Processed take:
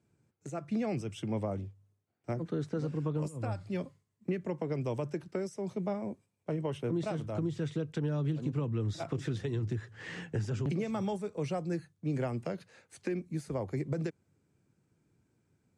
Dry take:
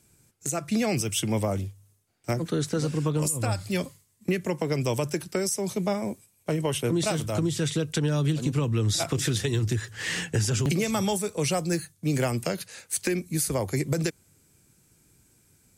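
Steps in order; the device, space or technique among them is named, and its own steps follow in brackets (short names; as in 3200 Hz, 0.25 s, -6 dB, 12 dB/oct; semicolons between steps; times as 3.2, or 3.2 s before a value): HPF 89 Hz; through cloth (LPF 7900 Hz 12 dB/oct; high shelf 2600 Hz -17.5 dB); gain -6.5 dB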